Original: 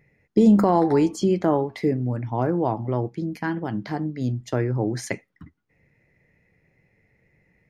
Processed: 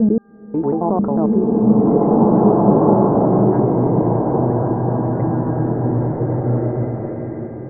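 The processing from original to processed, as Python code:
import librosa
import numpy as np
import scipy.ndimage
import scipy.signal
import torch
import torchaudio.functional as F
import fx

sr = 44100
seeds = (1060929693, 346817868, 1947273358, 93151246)

y = fx.block_reorder(x, sr, ms=90.0, group=6)
y = scipy.signal.sosfilt(scipy.signal.butter(4, 1100.0, 'lowpass', fs=sr, output='sos'), y)
y = fx.dmg_buzz(y, sr, base_hz=400.0, harmonics=4, level_db=-57.0, tilt_db=-2, odd_only=False)
y = fx.rev_bloom(y, sr, seeds[0], attack_ms=2050, drr_db=-8.0)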